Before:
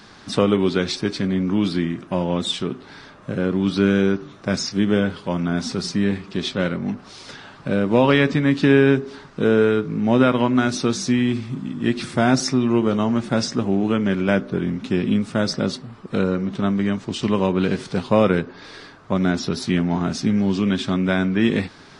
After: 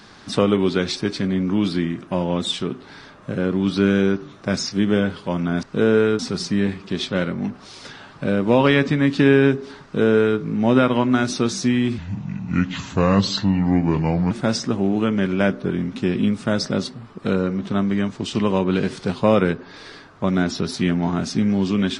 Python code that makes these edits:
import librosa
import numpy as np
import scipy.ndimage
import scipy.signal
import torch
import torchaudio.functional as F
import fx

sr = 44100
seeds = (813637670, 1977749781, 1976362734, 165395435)

y = fx.edit(x, sr, fx.duplicate(start_s=9.27, length_s=0.56, to_s=5.63),
    fx.speed_span(start_s=11.42, length_s=1.77, speed=0.76), tone=tone)